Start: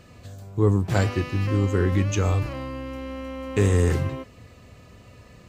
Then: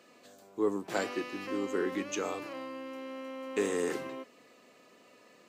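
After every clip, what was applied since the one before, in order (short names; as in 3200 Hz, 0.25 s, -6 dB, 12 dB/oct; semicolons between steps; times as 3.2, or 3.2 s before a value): HPF 260 Hz 24 dB/oct; gain -6 dB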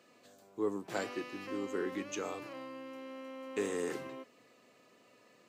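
bell 120 Hz +7.5 dB 0.45 oct; gain -4.5 dB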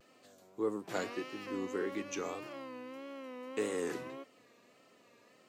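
vibrato 1.7 Hz 89 cents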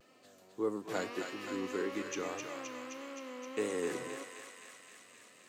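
thinning echo 0.261 s, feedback 79%, high-pass 980 Hz, level -4 dB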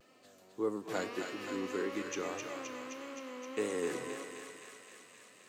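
reverb RT60 3.2 s, pre-delay 0.198 s, DRR 14.5 dB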